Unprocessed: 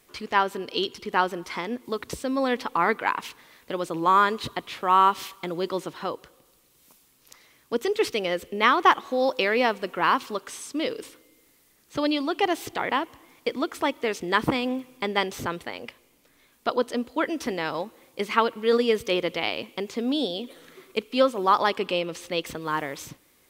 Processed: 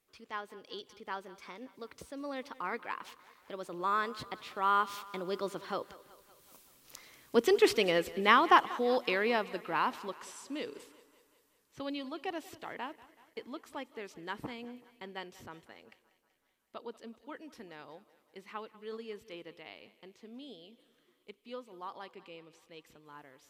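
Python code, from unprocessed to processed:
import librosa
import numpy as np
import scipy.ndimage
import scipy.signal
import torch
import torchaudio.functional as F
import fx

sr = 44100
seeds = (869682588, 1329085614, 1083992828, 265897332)

y = fx.doppler_pass(x, sr, speed_mps=19, closest_m=17.0, pass_at_s=7.23)
y = fx.echo_thinned(y, sr, ms=189, feedback_pct=62, hz=210.0, wet_db=-18.5)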